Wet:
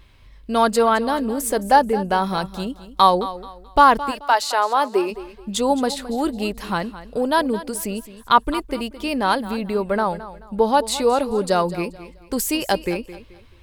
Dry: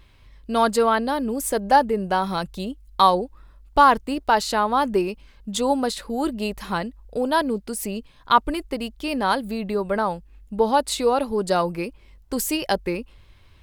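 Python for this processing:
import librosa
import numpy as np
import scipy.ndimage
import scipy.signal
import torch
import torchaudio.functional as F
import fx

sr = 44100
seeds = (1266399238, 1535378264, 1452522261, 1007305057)

y = fx.highpass(x, sr, hz=fx.line((4.1, 760.0), (5.1, 240.0)), slope=24, at=(4.1, 5.1), fade=0.02)
y = fx.echo_feedback(y, sr, ms=216, feedback_pct=30, wet_db=-15.0)
y = y * 10.0 ** (2.0 / 20.0)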